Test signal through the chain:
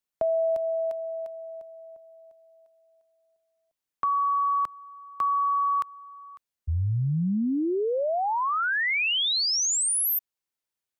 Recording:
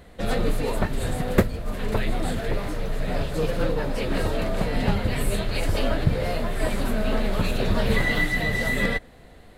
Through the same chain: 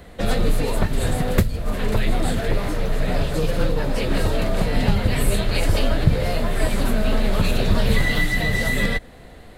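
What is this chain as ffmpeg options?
-filter_complex "[0:a]acrossover=split=170|3000[s0][s1][s2];[s1]acompressor=threshold=0.0398:ratio=6[s3];[s0][s3][s2]amix=inputs=3:normalize=0,volume=1.88"

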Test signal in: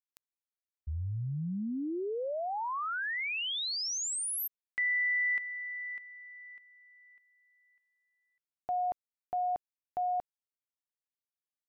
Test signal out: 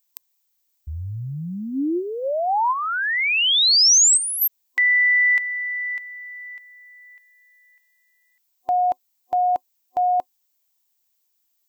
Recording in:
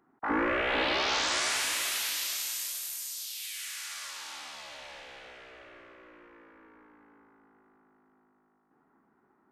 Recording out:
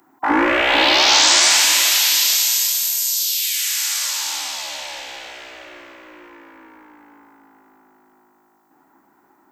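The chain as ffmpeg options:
-filter_complex "[0:a]crystalizer=i=7.5:c=0,acrossover=split=6400[s0][s1];[s1]acompressor=threshold=0.0631:ratio=4:attack=1:release=60[s2];[s0][s2]amix=inputs=2:normalize=0,superequalizer=6b=2.24:8b=1.78:9b=2.24:16b=0.355,volume=1.78"

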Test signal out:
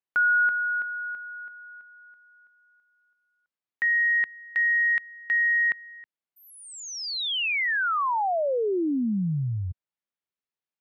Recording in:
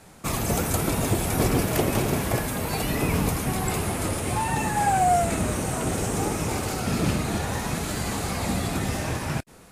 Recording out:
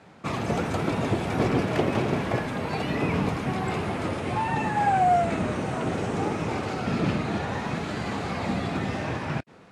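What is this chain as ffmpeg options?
-af "highpass=110,lowpass=3300"

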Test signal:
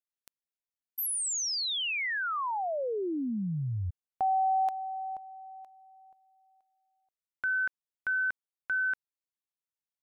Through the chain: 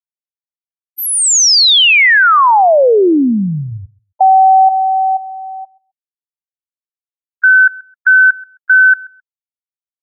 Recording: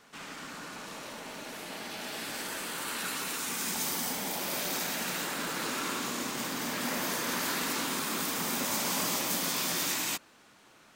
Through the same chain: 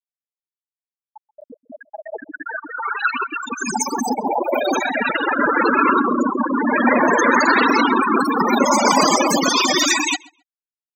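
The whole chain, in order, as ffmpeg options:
-filter_complex "[0:a]highpass=260,afftfilt=real='re*gte(hypot(re,im),0.0447)':imag='im*gte(hypot(re,im),0.0447)':win_size=1024:overlap=0.75,lowpass=7800,asplit=2[s0][s1];[s1]adelay=132,lowpass=f=4500:p=1,volume=0.0668,asplit=2[s2][s3];[s3]adelay=132,lowpass=f=4500:p=1,volume=0.17[s4];[s2][s4]amix=inputs=2:normalize=0[s5];[s0][s5]amix=inputs=2:normalize=0,alimiter=level_in=21.1:limit=0.891:release=50:level=0:latency=1,volume=0.75"

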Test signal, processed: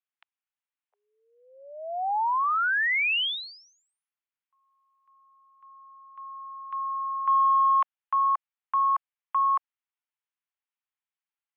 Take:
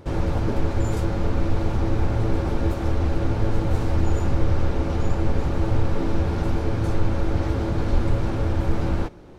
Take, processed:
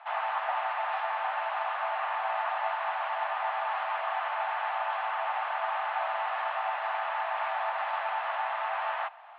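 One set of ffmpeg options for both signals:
-af "highpass=f=440:t=q:w=0.5412,highpass=f=440:t=q:w=1.307,lowpass=f=2900:t=q:w=0.5176,lowpass=f=2900:t=q:w=0.7071,lowpass=f=2900:t=q:w=1.932,afreqshift=330,acontrast=41,volume=0.668"

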